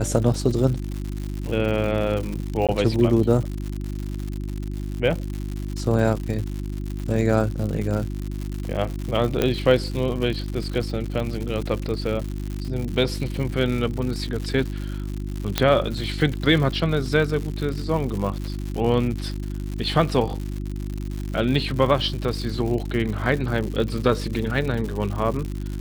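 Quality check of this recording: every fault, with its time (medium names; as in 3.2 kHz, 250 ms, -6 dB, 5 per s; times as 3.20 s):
crackle 150 per s -28 dBFS
hum 50 Hz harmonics 7 -29 dBFS
2.67–2.69 s: dropout 17 ms
9.42 s: pop -7 dBFS
15.58 s: pop -3 dBFS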